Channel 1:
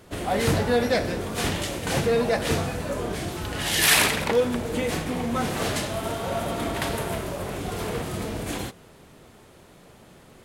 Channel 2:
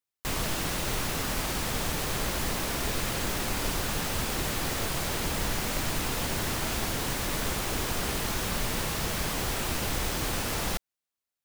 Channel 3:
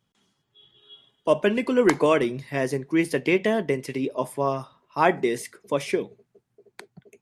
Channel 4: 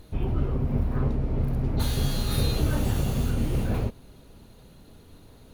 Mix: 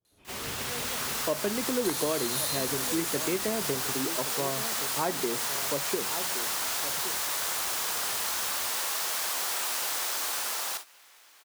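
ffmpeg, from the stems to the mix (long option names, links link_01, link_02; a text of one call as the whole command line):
ffmpeg -i stem1.wav -i stem2.wav -i stem3.wav -i stem4.wav -filter_complex "[0:a]lowpass=1200,volume=-19dB[link_01];[1:a]highpass=1000,dynaudnorm=framelen=250:gausssize=9:maxgain=11dB,volume=-1dB,asplit=2[link_02][link_03];[link_03]volume=-14dB[link_04];[2:a]volume=0.5dB,asplit=2[link_05][link_06];[link_06]volume=-14dB[link_07];[3:a]highpass=frequency=1400:poles=1,equalizer=frequency=8400:width=0.44:gain=13.5,adelay=50,volume=2.5dB[link_08];[link_04][link_07]amix=inputs=2:normalize=0,aecho=0:1:1119:1[link_09];[link_01][link_02][link_05][link_08][link_09]amix=inputs=5:normalize=0,agate=range=-18dB:threshold=-32dB:ratio=16:detection=peak,adynamicequalizer=threshold=0.0141:dfrequency=2300:dqfactor=0.86:tfrequency=2300:tqfactor=0.86:attack=5:release=100:ratio=0.375:range=3:mode=cutabove:tftype=bell,acompressor=threshold=-30dB:ratio=2.5" out.wav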